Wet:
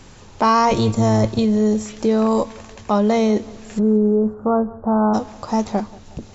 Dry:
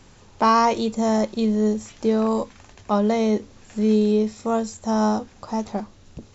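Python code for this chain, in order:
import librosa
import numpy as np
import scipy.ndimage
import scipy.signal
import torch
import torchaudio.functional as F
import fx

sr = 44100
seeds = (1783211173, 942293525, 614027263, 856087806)

p1 = fx.octave_divider(x, sr, octaves=1, level_db=0.0, at=(0.69, 1.39))
p2 = fx.steep_lowpass(p1, sr, hz=1500.0, slope=72, at=(3.78, 5.13), fade=0.02)
p3 = fx.over_compress(p2, sr, threshold_db=-23.0, ratio=-1.0)
p4 = p2 + (p3 * librosa.db_to_amplitude(-2.5))
y = fx.echo_feedback(p4, sr, ms=183, feedback_pct=54, wet_db=-21.5)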